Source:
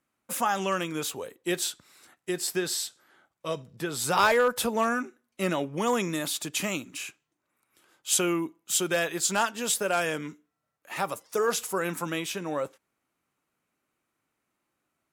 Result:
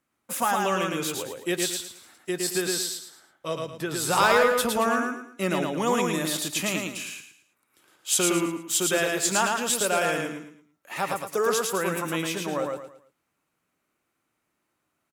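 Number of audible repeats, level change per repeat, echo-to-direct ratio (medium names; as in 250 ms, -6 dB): 4, -10.0 dB, -2.5 dB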